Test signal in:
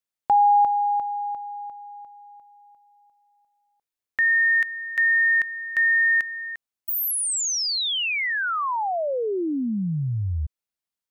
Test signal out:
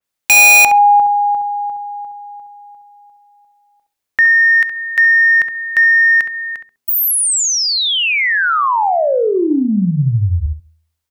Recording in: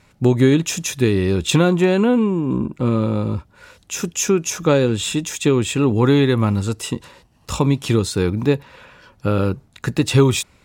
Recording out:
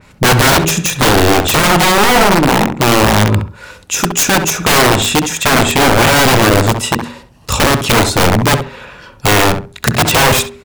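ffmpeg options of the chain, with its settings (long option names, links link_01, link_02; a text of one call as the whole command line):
ffmpeg -i in.wav -filter_complex "[0:a]bandreject=frequency=80.18:width_type=h:width=4,bandreject=frequency=160.36:width_type=h:width=4,bandreject=frequency=240.54:width_type=h:width=4,bandreject=frequency=320.72:width_type=h:width=4,bandreject=frequency=400.9:width_type=h:width=4,aeval=exprs='(mod(5.31*val(0)+1,2)-1)/5.31':channel_layout=same,acontrast=68,asplit=2[link_01][link_02];[link_02]adelay=67,lowpass=frequency=1800:poles=1,volume=-7dB,asplit=2[link_03][link_04];[link_04]adelay=67,lowpass=frequency=1800:poles=1,volume=0.23,asplit=2[link_05][link_06];[link_06]adelay=67,lowpass=frequency=1800:poles=1,volume=0.23[link_07];[link_03][link_05][link_07]amix=inputs=3:normalize=0[link_08];[link_01][link_08]amix=inputs=2:normalize=0,adynamicequalizer=threshold=0.0562:dfrequency=3100:dqfactor=0.7:tfrequency=3100:tqfactor=0.7:attack=5:release=100:ratio=0.375:range=1.5:mode=cutabove:tftype=highshelf,volume=4dB" out.wav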